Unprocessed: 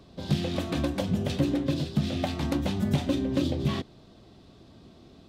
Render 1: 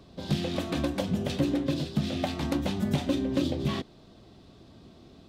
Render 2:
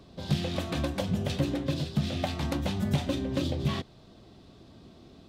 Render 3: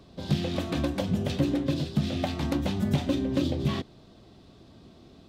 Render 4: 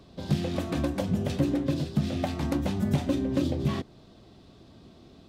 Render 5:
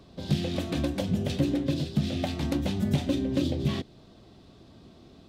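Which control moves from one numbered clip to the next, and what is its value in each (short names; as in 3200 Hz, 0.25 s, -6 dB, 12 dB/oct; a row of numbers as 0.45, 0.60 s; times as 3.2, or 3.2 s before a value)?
dynamic EQ, frequency: 100, 290, 9600, 3500, 1100 Hz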